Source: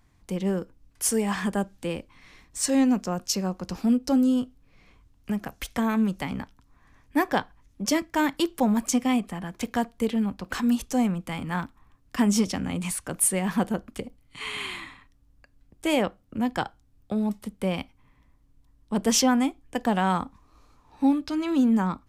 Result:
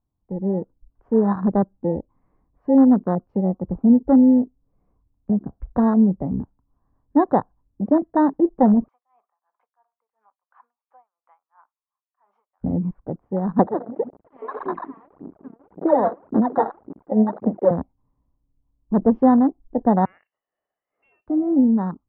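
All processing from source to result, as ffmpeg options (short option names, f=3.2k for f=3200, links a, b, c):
-filter_complex "[0:a]asettb=1/sr,asplit=3[a][b][c];[a]atrim=end=8.884[d];[b]atrim=start=8.88:end=12.64,asetpts=PTS-STARTPTS,afade=t=in:d=0.004:c=qsin,afade=t=out:st=3.756:d=0.004:c=qsin,highpass=f=950:w=0.5412,highpass=f=950:w=1.3066,aeval=exprs='val(0)*pow(10,-26*(0.5-0.5*cos(2*PI*2.9*n/s))/20)':c=same[e];[c]atrim=start=12.636[f];[d][e]acrossfade=d=0.004:c1=hsin:c2=qsin[g];[g][f]acrossfade=d=0.004:c1=qsin:c2=hsin,asettb=1/sr,asplit=3[h][i][j];[h]atrim=end=13.594[k];[i]atrim=start=13.59:end=17.71,asetpts=PTS-STARTPTS,afade=t=in:d=0.004:c=qsin,afade=t=out:st=4.116:d=0.004:c=qsin,aeval=exprs='val(0)+0.5*0.0316*sgn(val(0))':c=same,highpass=340,aphaser=in_gain=1:out_gain=1:delay=4.5:decay=0.75:speed=1.8:type=sinusoidal[l];[j]atrim=start=17.706[m];[k][l]acrossfade=d=0.004:c1=hsin:c2=qsin[n];[n][m]acrossfade=d=0.004:c1=qsin:c2=hsin,asettb=1/sr,asplit=3[o][p][q];[o]atrim=end=20.054[r];[p]atrim=start=20.05:end=21.27,asetpts=PTS-STARTPTS,afade=t=in:d=0.004:c=qsin,afade=t=out:st=1.216:d=0.004:c=qsin,lowpass=f=2.6k:t=q:w=0.5098,lowpass=f=2.6k:t=q:w=0.6013,lowpass=f=2.6k:t=q:w=0.9,lowpass=f=2.6k:t=q:w=2.563,afreqshift=-3000,volume=19dB,asoftclip=hard,volume=-19dB[s];[q]atrim=start=21.266[t];[r][s]acrossfade=d=0.004:c1=hsin:c2=qsin[u];[u][t]acrossfade=d=0.004:c1=qsin:c2=hsin,lowpass=f=1k:w=0.5412,lowpass=f=1k:w=1.3066,afwtdn=0.0316,dynaudnorm=f=130:g=9:m=8dB"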